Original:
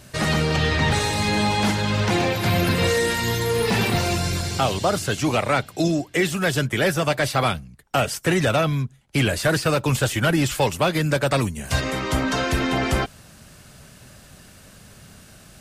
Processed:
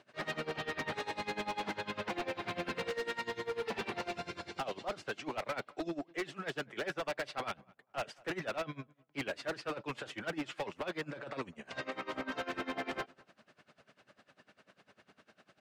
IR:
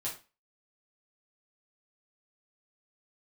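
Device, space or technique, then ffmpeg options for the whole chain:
helicopter radio: -filter_complex "[0:a]highpass=310,lowpass=2800,aeval=exprs='val(0)*pow(10,-22*(0.5-0.5*cos(2*PI*10*n/s))/20)':channel_layout=same,asoftclip=type=hard:threshold=-26dB,asettb=1/sr,asplit=3[link_01][link_02][link_03];[link_01]atrim=end=11.194[link_04];[link_02]atrim=start=11.19:end=11.91,asetpts=PTS-STARTPTS,afade=type=in:duration=0.004:curve=qsin,afade=type=out:start_time=0.716:duration=0.004:curve=qsin,lowpass=frequency=9400:width=0.5412,lowpass=frequency=9400:width=1.3066[link_05];[link_03]atrim=start=11.906[link_06];[link_04][link_05]acrossfade=duration=0.004:curve1=hsin:curve2=qsin[link_07];[link_07][link_06]acrossfade=duration=0.004:curve1=qsin:curve2=hsin,asplit=2[link_08][link_09];[link_09]adelay=207,lowpass=frequency=1600:poles=1,volume=-24dB,asplit=2[link_10][link_11];[link_11]adelay=207,lowpass=frequency=1600:poles=1,volume=0.23[link_12];[link_08][link_10][link_12]amix=inputs=3:normalize=0,volume=-6dB"

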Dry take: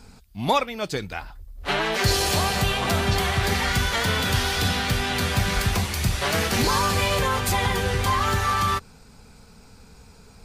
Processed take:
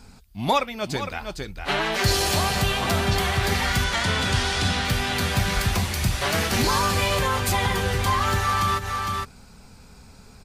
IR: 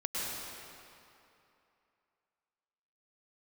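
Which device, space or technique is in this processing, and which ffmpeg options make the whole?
ducked delay: -filter_complex "[0:a]asettb=1/sr,asplit=3[link_01][link_02][link_03];[link_01]atrim=end=3.844[link_04];[link_02]atrim=start=3.84:end=4.85,asetpts=PTS-STARTPTS,afade=type=in:duration=0.004:curve=qsin,afade=type=out:start_time=1.006:duration=0.004:curve=qsin,lowpass=frequency=9800:width=0.5412,lowpass=frequency=9800:width=1.3066[link_05];[link_03]atrim=start=4.846[link_06];[link_04][link_05]acrossfade=duration=0.004:curve1=hsin:curve2=qsin[link_07];[link_07][link_06]acrossfade=duration=0.004:curve1=qsin:curve2=hsin,bandreject=frequency=460:width=12,asplit=3[link_08][link_09][link_10];[link_09]adelay=458,volume=-4.5dB[link_11];[link_10]apad=whole_len=480796[link_12];[link_11][link_12]sidechaincompress=threshold=-34dB:ratio=8:attack=16:release=108[link_13];[link_08][link_13]amix=inputs=2:normalize=0"

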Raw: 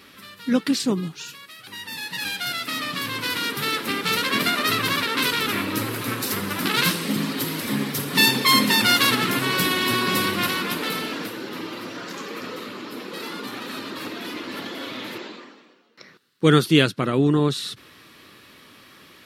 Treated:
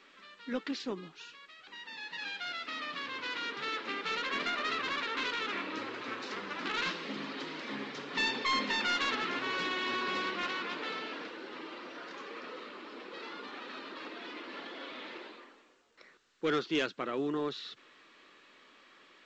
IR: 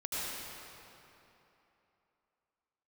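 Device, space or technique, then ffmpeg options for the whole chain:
telephone: -af "highpass=360,lowpass=3500,asoftclip=type=tanh:threshold=-13.5dB,volume=-9dB" -ar 16000 -c:a pcm_alaw

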